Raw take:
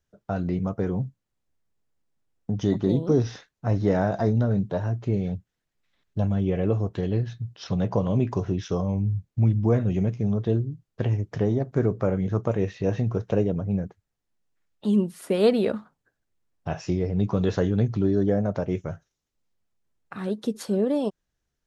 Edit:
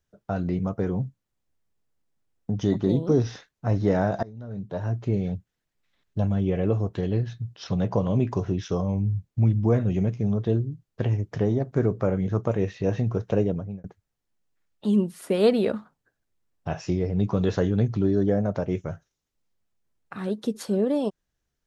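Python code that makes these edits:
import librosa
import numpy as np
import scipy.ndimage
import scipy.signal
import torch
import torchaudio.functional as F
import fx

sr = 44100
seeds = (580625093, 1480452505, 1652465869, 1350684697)

y = fx.edit(x, sr, fx.fade_in_from(start_s=4.23, length_s=0.68, curve='qua', floor_db=-22.0),
    fx.fade_out_span(start_s=13.5, length_s=0.34), tone=tone)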